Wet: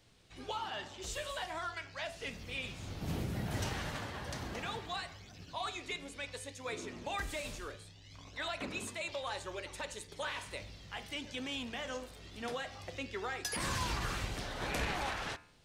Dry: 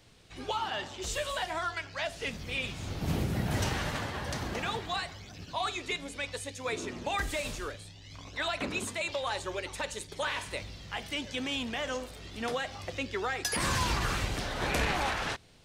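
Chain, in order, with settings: de-hum 74.03 Hz, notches 38; gain -6 dB

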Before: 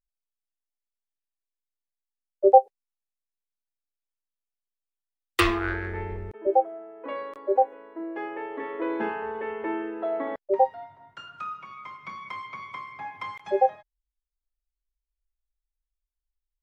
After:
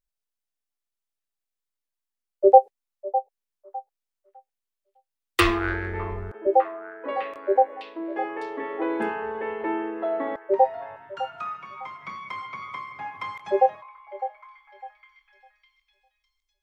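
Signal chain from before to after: delay with a stepping band-pass 0.605 s, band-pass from 770 Hz, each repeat 0.7 oct, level -10.5 dB; gain +2 dB

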